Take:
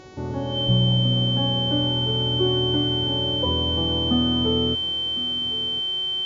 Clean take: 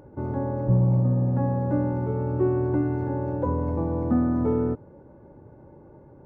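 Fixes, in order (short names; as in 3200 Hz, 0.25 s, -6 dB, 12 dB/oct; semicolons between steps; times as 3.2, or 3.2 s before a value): de-hum 372.7 Hz, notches 19; notch 3100 Hz, Q 30; inverse comb 1.058 s -16.5 dB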